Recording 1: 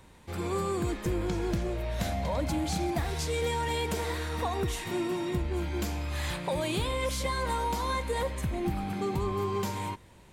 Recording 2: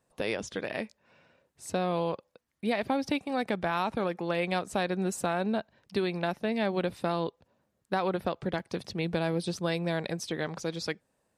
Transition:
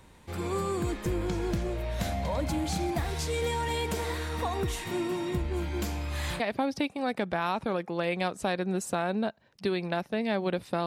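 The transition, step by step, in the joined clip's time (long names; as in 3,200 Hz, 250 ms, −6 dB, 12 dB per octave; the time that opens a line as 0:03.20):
recording 1
0:06.40: continue with recording 2 from 0:02.71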